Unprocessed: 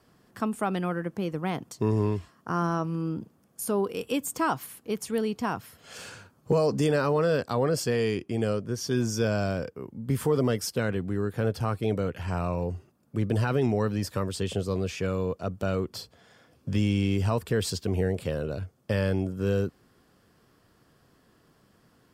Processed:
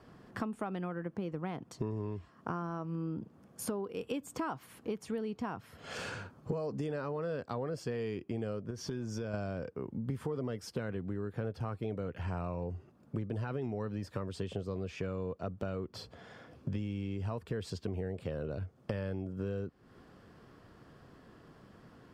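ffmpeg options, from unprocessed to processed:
-filter_complex "[0:a]asettb=1/sr,asplit=3[s0][s1][s2];[s0]atrim=end=8.704[s3];[s1]atrim=start=8.7:end=9.34,asetpts=PTS-STARTPTS,afade=t=in:d=0.004:c=qsin,afade=t=out:st=0.636:d=0.004:c=qsin,acompressor=threshold=0.0251:ratio=5:attack=3.2:release=140:knee=1:detection=peak[s4];[s2]atrim=start=9.336[s5];[s3][s4]acrossfade=d=0.004:c1=hsin:c2=qsin[s6];[s6][s5]acrossfade=d=0.004:c1=qsin:c2=hsin,aemphasis=mode=reproduction:type=75kf,acompressor=threshold=0.00891:ratio=6,volume=2"

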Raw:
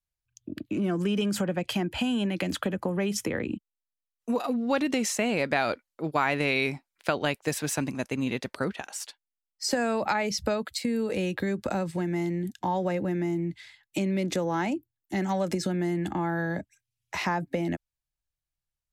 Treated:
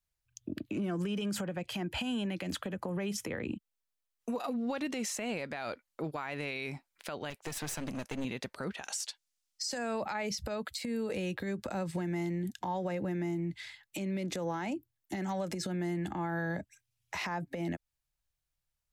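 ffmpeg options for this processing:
-filter_complex "[0:a]asettb=1/sr,asplit=3[s0][s1][s2];[s0]atrim=end=7.304[s3];[s1]atrim=start=7.3:end=8.25,asetpts=PTS-STARTPTS,afade=t=in:d=0.004:c=qsin,afade=t=out:st=0.946:d=0.004:c=qsin,aeval=exprs='clip(val(0),-1,0.0168)':c=same[s4];[s2]atrim=start=8.246[s5];[s3][s4]acrossfade=d=0.004:c1=hsin:c2=qsin[s6];[s6][s5]acrossfade=d=0.004:c1=qsin:c2=hsin,asplit=3[s7][s8][s9];[s7]afade=t=out:st=8.83:d=0.02[s10];[s8]equalizer=f=6000:w=0.56:g=11.5,afade=t=in:st=8.83:d=0.02,afade=t=out:st=9.77:d=0.02[s11];[s9]afade=t=in:st=9.77:d=0.02[s12];[s10][s11][s12]amix=inputs=3:normalize=0,equalizer=f=300:w=1.5:g=-2.5,acompressor=threshold=0.02:ratio=6,alimiter=level_in=1.88:limit=0.0631:level=0:latency=1:release=66,volume=0.531,volume=1.41"

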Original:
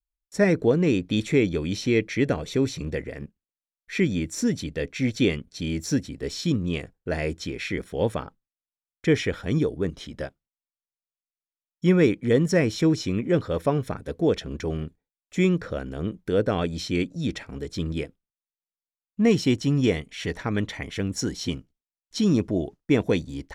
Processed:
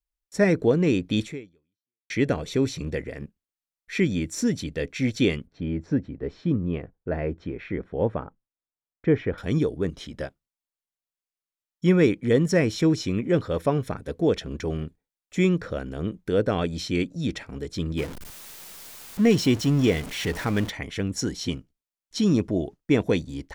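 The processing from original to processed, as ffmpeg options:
-filter_complex "[0:a]asettb=1/sr,asplit=3[s0][s1][s2];[s0]atrim=end=5.474[s3];[s1]atrim=start=5.47:end=9.38,asetpts=PTS-STARTPTS,afade=t=in:d=0.004:c=qsin,afade=t=out:st=3.906:d=0.004:c=qsin,lowpass=1400[s4];[s2]atrim=start=9.376[s5];[s3][s4]acrossfade=d=0.004:c1=hsin:c2=qsin[s6];[s6][s5]acrossfade=d=0.004:c1=qsin:c2=hsin,asettb=1/sr,asplit=3[s7][s8][s9];[s7]atrim=end=17.984[s10];[s8]atrim=start=17.98:end=20.7,asetpts=PTS-STARTPTS,afade=t=in:d=0.004:c=qsin,afade=t=out:st=2.716:d=0.004:c=qsin,aeval=exprs='val(0)+0.5*0.0266*sgn(val(0))':c=same[s11];[s9]atrim=start=20.696[s12];[s10][s11]acrossfade=d=0.004:c1=hsin:c2=qsin[s13];[s13][s12]acrossfade=d=0.004:c1=qsin:c2=hsin,asplit=2[s14][s15];[s14]atrim=end=2.1,asetpts=PTS-STARTPTS,afade=t=out:st=1.23:d=0.87:c=exp[s16];[s15]atrim=start=2.1,asetpts=PTS-STARTPTS,afade=t=in:d=0.004:c=hsin[s17];[s16][s17]concat=n=2:v=0:a=1"

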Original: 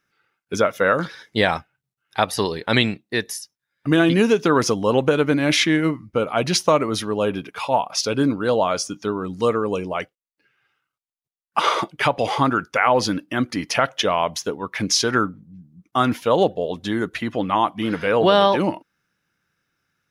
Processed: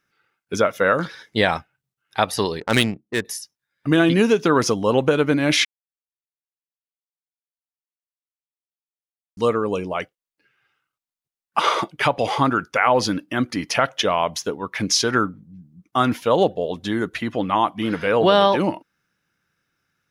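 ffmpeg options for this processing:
-filter_complex "[0:a]asettb=1/sr,asplit=3[s0][s1][s2];[s0]atrim=end=2.604[s3];[s1]atrim=start=2.6:end=3.25,asetpts=PTS-STARTPTS,afade=t=in:d=0.004:c=qsin,afade=t=out:st=0.646:d=0.004:c=qsin,adynamicsmooth=sensitivity=1.5:basefreq=550[s4];[s2]atrim=start=3.246[s5];[s3][s4]acrossfade=d=0.004:c1=hsin:c2=qsin[s6];[s6][s5]acrossfade=d=0.004:c1=qsin:c2=hsin,asplit=3[s7][s8][s9];[s7]atrim=end=5.65,asetpts=PTS-STARTPTS,afade=t=out:st=5.646:d=0.004:c=hsin[s10];[s8]atrim=start=5.65:end=9.37,asetpts=PTS-STARTPTS,volume=0[s11];[s9]atrim=start=9.37,asetpts=PTS-STARTPTS,afade=t=in:d=0.004:c=hsin[s12];[s10][s11][s12]concat=n=3:v=0:a=1"

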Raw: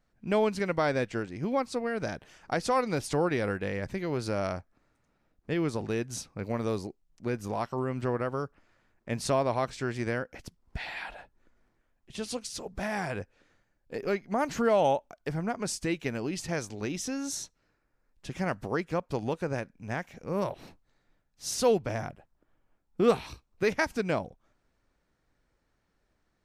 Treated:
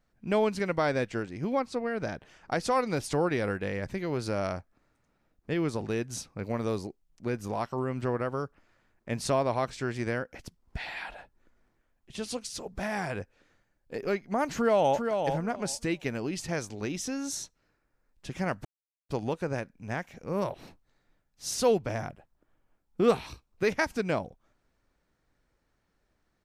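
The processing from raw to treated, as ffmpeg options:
-filter_complex "[0:a]asettb=1/sr,asplit=3[s0][s1][s2];[s0]atrim=end=1.594[s3];[s1]atrim=start=1.59:end=2.52,asetpts=PTS-STARTPTS,afade=t=in:d=0.004:c=qsin,afade=t=out:st=0.926:d=0.004:c=qsin,highshelf=f=5900:g=-8.5[s4];[s2]atrim=start=2.516[s5];[s3][s4]acrossfade=d=0.004:c1=hsin:c2=qsin[s6];[s6][s5]acrossfade=d=0.004:c1=qsin:c2=hsin,asplit=2[s7][s8];[s8]afade=t=in:st=14.53:d=0.01,afade=t=out:st=15.2:d=0.01,aecho=0:1:400|800|1200:0.530884|0.0796327|0.0119449[s9];[s7][s9]amix=inputs=2:normalize=0,asplit=3[s10][s11][s12];[s10]atrim=end=18.65,asetpts=PTS-STARTPTS,afade=t=out:st=18.646:d=0.004:c=hsin[s13];[s11]atrim=start=18.65:end=19.09,asetpts=PTS-STARTPTS,volume=0[s14];[s12]atrim=start=19.09,asetpts=PTS-STARTPTS,afade=t=in:d=0.004:c=hsin[s15];[s13][s14][s15]concat=n=3:v=0:a=1"

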